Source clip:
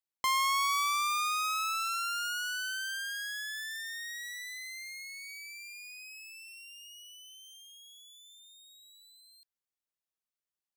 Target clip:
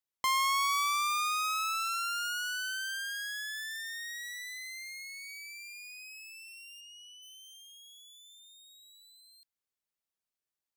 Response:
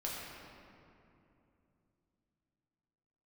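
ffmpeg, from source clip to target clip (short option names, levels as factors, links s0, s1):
-filter_complex "[0:a]asplit=3[s0][s1][s2];[s0]afade=t=out:st=6.8:d=0.02[s3];[s1]lowpass=6700,afade=t=in:st=6.8:d=0.02,afade=t=out:st=7.21:d=0.02[s4];[s2]afade=t=in:st=7.21:d=0.02[s5];[s3][s4][s5]amix=inputs=3:normalize=0"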